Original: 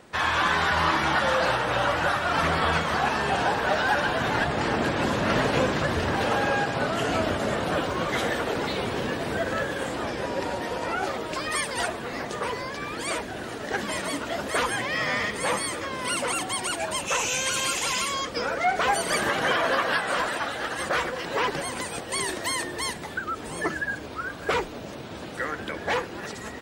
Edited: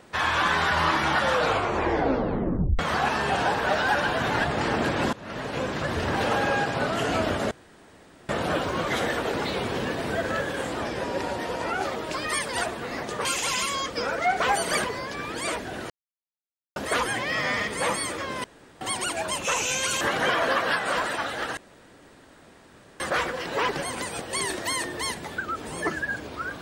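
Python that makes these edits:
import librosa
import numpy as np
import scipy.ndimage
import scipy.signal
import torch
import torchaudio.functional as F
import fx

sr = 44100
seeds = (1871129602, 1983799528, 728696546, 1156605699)

y = fx.edit(x, sr, fx.tape_stop(start_s=1.32, length_s=1.47),
    fx.fade_in_from(start_s=5.13, length_s=1.05, floor_db=-21.5),
    fx.insert_room_tone(at_s=7.51, length_s=0.78),
    fx.silence(start_s=13.53, length_s=0.86),
    fx.room_tone_fill(start_s=16.07, length_s=0.37),
    fx.move(start_s=17.64, length_s=1.59, to_s=12.47),
    fx.insert_room_tone(at_s=20.79, length_s=1.43), tone=tone)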